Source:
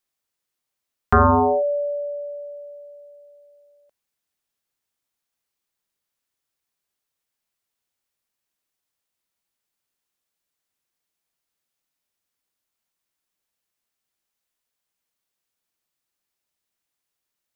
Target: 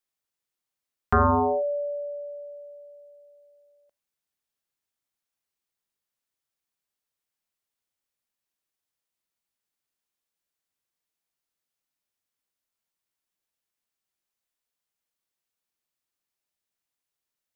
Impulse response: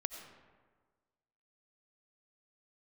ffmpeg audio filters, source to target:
-filter_complex "[0:a]asplit=2[s0][s1];[1:a]atrim=start_sample=2205,atrim=end_sample=3528[s2];[s1][s2]afir=irnorm=-1:irlink=0,volume=0.631[s3];[s0][s3]amix=inputs=2:normalize=0,volume=0.355"

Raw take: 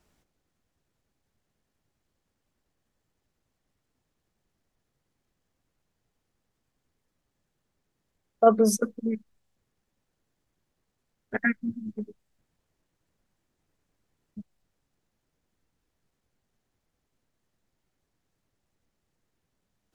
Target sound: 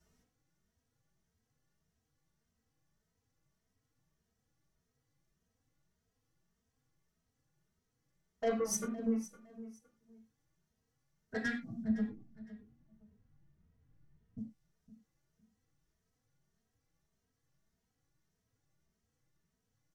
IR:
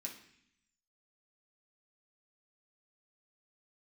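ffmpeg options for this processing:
-filter_complex "[0:a]asettb=1/sr,asplit=3[s0][s1][s2];[s0]atrim=end=11.844[s3];[s1]atrim=start=11.84:end=14.38,asetpts=PTS-STARTPTS,afade=t=in:d=0.004:c=qsin,afade=t=out:st=2.536:d=0.004:c=qsin,bass=f=250:g=13,treble=f=4000:g=-12[s4];[s2]atrim=start=14.376[s5];[s3][s4]acrossfade=d=0.004:c1=hsin:c2=qsin[s6];[s6][s5]acrossfade=d=0.004:c1=qsin:c2=hsin,acompressor=threshold=0.0631:ratio=2,asoftclip=type=tanh:threshold=0.0531,aecho=1:1:511|1022:0.141|0.0325[s7];[1:a]atrim=start_sample=2205,atrim=end_sample=3969,asetrate=33516,aresample=44100[s8];[s7][s8]afir=irnorm=-1:irlink=0,asplit=2[s9][s10];[s10]adelay=2.9,afreqshift=1.7[s11];[s9][s11]amix=inputs=2:normalize=1"

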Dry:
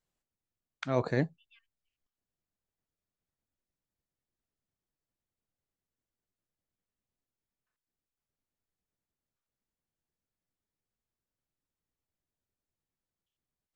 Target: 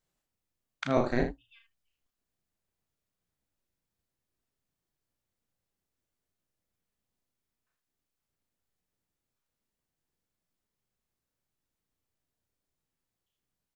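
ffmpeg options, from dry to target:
-filter_complex "[0:a]asettb=1/sr,asplit=3[s0][s1][s2];[s0]atrim=end=0.974[s3];[s1]atrim=start=0.97:end=1.45,asetpts=PTS-STARTPTS,afade=t=in:d=0.004:c=qsin,afade=t=out:st=0.476:d=0.004:c=qsin,aeval=exprs='val(0)*sin(2*PI*120*n/s)':c=same[s4];[s2]atrim=start=1.446[s5];[s3][s4]acrossfade=d=0.004:c1=hsin:c2=qsin[s6];[s6][s5]acrossfade=d=0.004:c1=qsin:c2=hsin,aecho=1:1:34|78:0.596|0.316,volume=1.33"

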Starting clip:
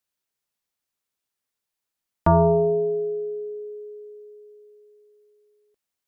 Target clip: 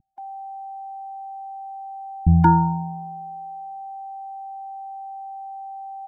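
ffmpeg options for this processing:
-filter_complex "[0:a]aeval=exprs='val(0)+0.0112*sin(2*PI*780*n/s)':c=same,acrossover=split=210[s0][s1];[s1]adelay=180[s2];[s0][s2]amix=inputs=2:normalize=0,afftfilt=real='re*eq(mod(floor(b*sr/1024/350),2),0)':imag='im*eq(mod(floor(b*sr/1024/350),2),0)':win_size=1024:overlap=0.75,volume=2.24"

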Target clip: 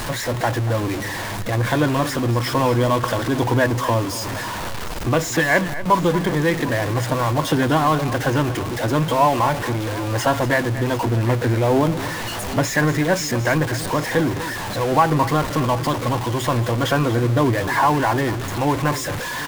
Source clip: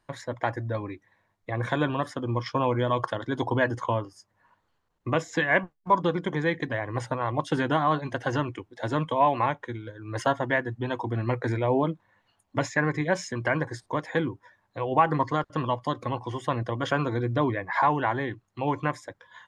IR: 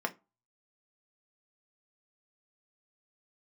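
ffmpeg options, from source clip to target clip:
-af "aeval=exprs='val(0)+0.5*0.0531*sgn(val(0))':c=same,lowshelf=f=480:g=2.5,aecho=1:1:236|748:0.2|0.126,volume=1.41"

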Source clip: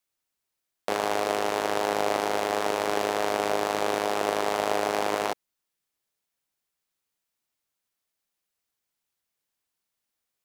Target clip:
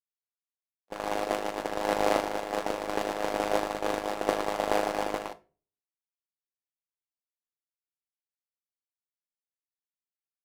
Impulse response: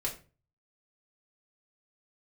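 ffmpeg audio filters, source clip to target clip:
-filter_complex "[0:a]agate=range=0.00178:threshold=0.0708:ratio=16:detection=peak,asplit=2[s0][s1];[1:a]atrim=start_sample=2205[s2];[s1][s2]afir=irnorm=-1:irlink=0,volume=0.335[s3];[s0][s3]amix=inputs=2:normalize=0,volume=1.58"

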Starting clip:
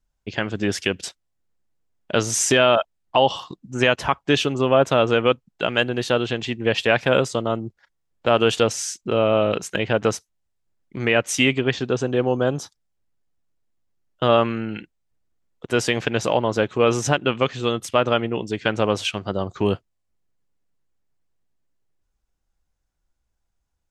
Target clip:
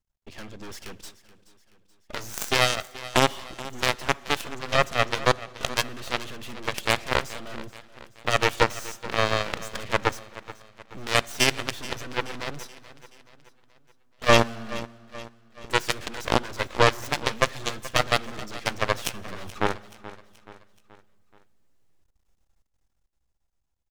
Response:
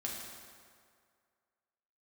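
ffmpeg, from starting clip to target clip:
-filter_complex "[0:a]aeval=exprs='max(val(0),0)':c=same,dynaudnorm=f=160:g=17:m=3.76,bandreject=f=1500:w=12,aeval=exprs='0.891*(cos(1*acos(clip(val(0)/0.891,-1,1)))-cos(1*PI/2))+0.0447*(cos(7*acos(clip(val(0)/0.891,-1,1)))-cos(7*PI/2))+0.126*(cos(8*acos(clip(val(0)/0.891,-1,1)))-cos(8*PI/2))':c=same,aecho=1:1:428|856|1284|1712:0.141|0.0706|0.0353|0.0177,asplit=2[s0][s1];[1:a]atrim=start_sample=2205[s2];[s1][s2]afir=irnorm=-1:irlink=0,volume=0.0944[s3];[s0][s3]amix=inputs=2:normalize=0"

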